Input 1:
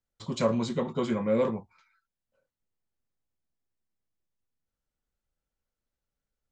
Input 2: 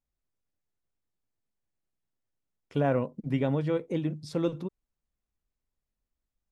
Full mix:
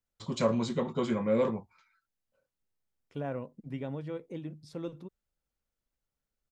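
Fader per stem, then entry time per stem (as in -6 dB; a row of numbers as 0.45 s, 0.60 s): -1.5 dB, -10.0 dB; 0.00 s, 0.40 s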